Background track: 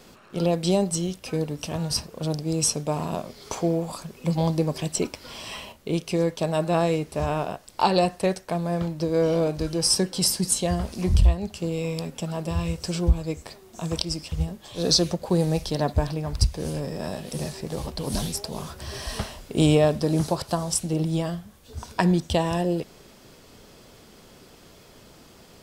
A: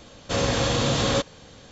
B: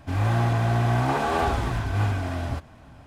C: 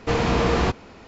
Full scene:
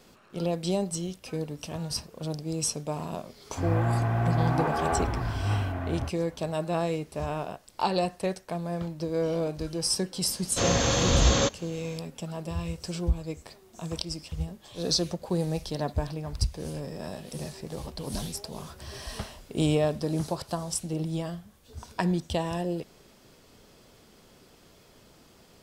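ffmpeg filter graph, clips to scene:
-filter_complex "[0:a]volume=0.501[s0];[2:a]lowpass=2100[s1];[1:a]equalizer=f=6400:w=5.4:g=8.5[s2];[s1]atrim=end=3.06,asetpts=PTS-STARTPTS,volume=0.668,afade=t=in:d=0.004:c=hsin,afade=t=out:st=3.056:d=0.004:c=hsin,adelay=3500[s3];[s2]atrim=end=1.71,asetpts=PTS-STARTPTS,volume=0.794,afade=t=in:d=0.004:c=hsin,afade=t=out:st=1.706:d=0.004:c=hsin,adelay=10270[s4];[s0][s3][s4]amix=inputs=3:normalize=0"

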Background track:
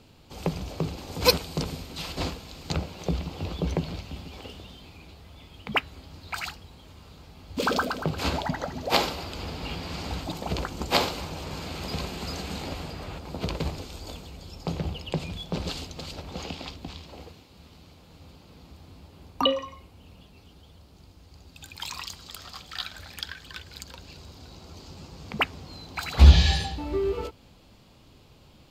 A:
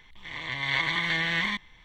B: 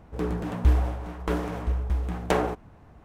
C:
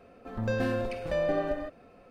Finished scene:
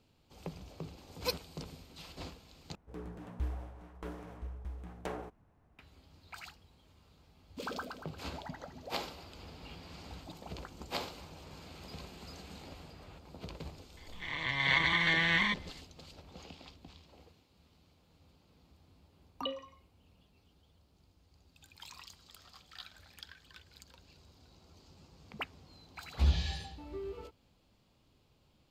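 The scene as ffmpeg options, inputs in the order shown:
-filter_complex "[0:a]volume=0.178[s0];[1:a]highshelf=f=5600:g=-4[s1];[s0]asplit=2[s2][s3];[s2]atrim=end=2.754[s4];[2:a]atrim=end=3.04,asetpts=PTS-STARTPTS,volume=0.15[s5];[s3]atrim=start=5.786[s6];[s1]atrim=end=1.84,asetpts=PTS-STARTPTS,volume=0.891,afade=t=in:d=0.004:c=hsin,afade=t=out:st=1.836:d=0.004:c=hsin,adelay=13970[s7];[s4][s5]acrossfade=d=0.004:c1=hsin:c2=hsin[s8];[s8][s6]acrossfade=d=0.004:c1=hsin:c2=hsin[s9];[s9][s7]amix=inputs=2:normalize=0"

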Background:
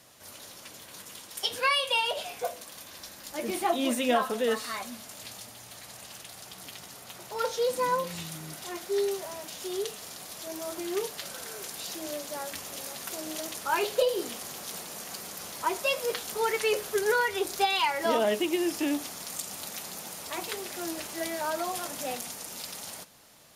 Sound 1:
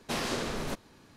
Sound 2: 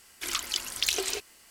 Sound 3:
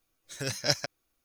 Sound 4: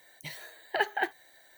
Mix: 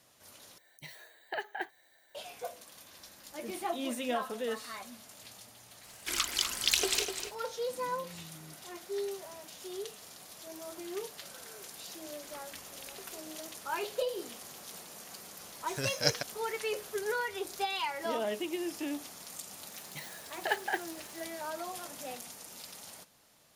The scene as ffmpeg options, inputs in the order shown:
-filter_complex "[4:a]asplit=2[s0][s1];[2:a]asplit=2[s2][s3];[0:a]volume=0.398[s4];[s0]alimiter=limit=0.15:level=0:latency=1:release=362[s5];[s2]aecho=1:1:250:0.447[s6];[s3]lowpass=2300[s7];[s4]asplit=2[s8][s9];[s8]atrim=end=0.584[s10];[s5]atrim=end=1.57,asetpts=PTS-STARTPTS,volume=0.473[s11];[s9]atrim=start=2.146[s12];[s6]atrim=end=1.5,asetpts=PTS-STARTPTS,volume=0.944,afade=t=in:d=0.004:c=hsin,afade=t=out:st=1.496:d=0.004:c=hsin,adelay=257985S[s13];[s7]atrim=end=1.5,asetpts=PTS-STARTPTS,volume=0.126,afade=t=in:d=0.004:c=hsin,afade=t=out:st=1.496:d=0.004:c=hsin,adelay=12000[s14];[3:a]atrim=end=1.24,asetpts=PTS-STARTPTS,volume=0.794,afade=t=in:d=0.004:c=hsin,afade=t=out:st=1.236:d=0.004:c=hsin,adelay=15370[s15];[s1]atrim=end=1.57,asetpts=PTS-STARTPTS,volume=0.668,afade=t=in:d=0.004:c=hsin,afade=t=out:st=1.566:d=0.004:c=hsin,adelay=19710[s16];[s10][s11]acrossfade=d=0.004:c1=hsin:c2=hsin[s17];[s17][s12]acrossfade=d=0.004:c1=hsin:c2=hsin[s18];[s18][s13][s14][s15][s16]amix=inputs=5:normalize=0"

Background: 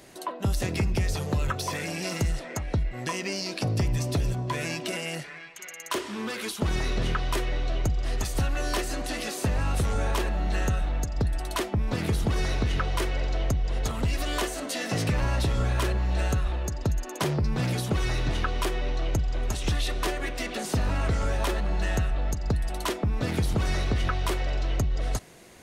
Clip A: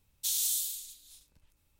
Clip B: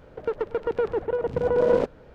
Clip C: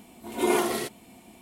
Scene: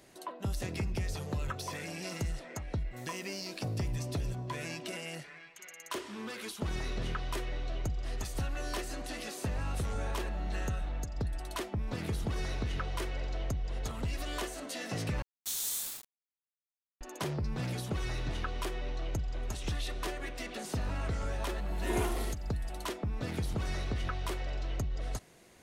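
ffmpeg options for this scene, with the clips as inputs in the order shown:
-filter_complex "[1:a]asplit=2[s0][s1];[0:a]volume=0.376[s2];[s0]acompressor=threshold=0.00562:ratio=6:attack=3.2:release=140:knee=1:detection=peak[s3];[s1]acrusher=bits=5:mix=0:aa=0.000001[s4];[s2]asplit=2[s5][s6];[s5]atrim=end=15.224[s7];[s4]atrim=end=1.79,asetpts=PTS-STARTPTS,volume=0.562[s8];[s6]atrim=start=17.006[s9];[s3]atrim=end=1.79,asetpts=PTS-STARTPTS,volume=0.251,afade=t=in:d=0.004:c=hsin,afade=t=out:st=1.786:d=0.004:c=hsin,adelay=2730[s10];[3:a]atrim=end=1.41,asetpts=PTS-STARTPTS,volume=0.299,afade=t=in:d=0.004:c=hsin,afade=t=out:st=1.406:d=0.004:c=hsin,adelay=21460[s11];[s7][s8]acrossfade=d=0.004:c1=hsin:c2=hsin[s12];[s12][s9]acrossfade=d=0.004:c1=hsin:c2=hsin[s13];[s13][s10][s11]amix=inputs=3:normalize=0"

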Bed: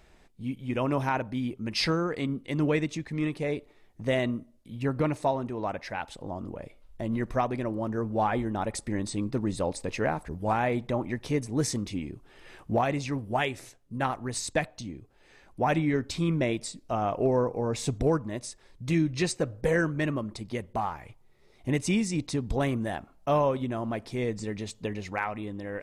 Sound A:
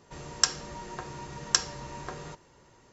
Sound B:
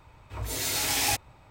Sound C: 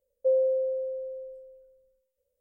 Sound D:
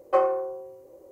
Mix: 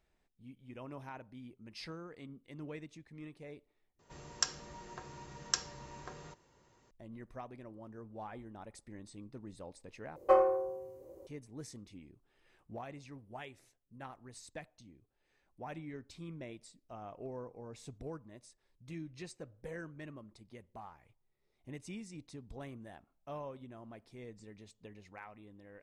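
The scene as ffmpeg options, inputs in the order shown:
-filter_complex "[0:a]volume=0.106[s0];[4:a]lowshelf=f=210:g=9.5[s1];[s0]asplit=3[s2][s3][s4];[s2]atrim=end=3.994[s5];[1:a]atrim=end=2.92,asetpts=PTS-STARTPTS,volume=0.355[s6];[s3]atrim=start=6.906:end=10.164[s7];[s1]atrim=end=1.11,asetpts=PTS-STARTPTS,volume=0.562[s8];[s4]atrim=start=11.266[s9];[s5][s6]acrossfade=d=0.004:c1=hsin:c2=hsin[s10];[s10][s7]acrossfade=d=0.004:c1=hsin:c2=hsin[s11];[s11][s8]acrossfade=d=0.004:c1=hsin:c2=hsin[s12];[s12][s9]acrossfade=d=0.004:c1=hsin:c2=hsin"

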